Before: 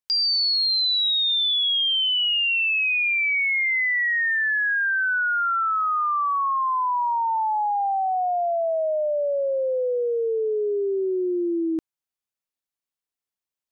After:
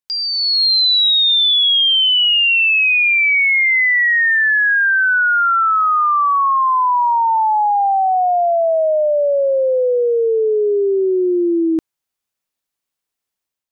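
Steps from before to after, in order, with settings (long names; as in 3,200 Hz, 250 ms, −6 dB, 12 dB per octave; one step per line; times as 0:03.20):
automatic gain control gain up to 8.5 dB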